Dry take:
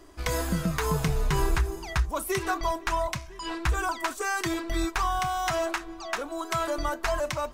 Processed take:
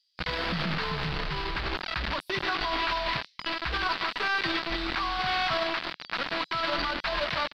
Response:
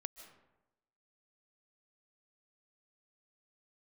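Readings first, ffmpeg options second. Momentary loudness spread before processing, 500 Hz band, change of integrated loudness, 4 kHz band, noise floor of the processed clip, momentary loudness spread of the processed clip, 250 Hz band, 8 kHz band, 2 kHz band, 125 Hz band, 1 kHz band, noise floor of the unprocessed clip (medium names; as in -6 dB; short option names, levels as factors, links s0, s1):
5 LU, -4.0 dB, 0.0 dB, +7.0 dB, -62 dBFS, 5 LU, -4.0 dB, -17.5 dB, +3.5 dB, -7.0 dB, -1.0 dB, -44 dBFS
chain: -filter_complex "[1:a]atrim=start_sample=2205,asetrate=61740,aresample=44100[s0];[0:a][s0]afir=irnorm=-1:irlink=0,acrossover=split=4800[s1][s2];[s1]acrusher=bits=5:mix=0:aa=0.000001[s3];[s3][s2]amix=inputs=2:normalize=0,alimiter=level_in=1.68:limit=0.0631:level=0:latency=1:release=17,volume=0.596,firequalizer=gain_entry='entry(100,0);entry(170,7);entry(380,3);entry(1300,10);entry(4600,12);entry(6600,-18);entry(10000,-22)':delay=0.05:min_phase=1"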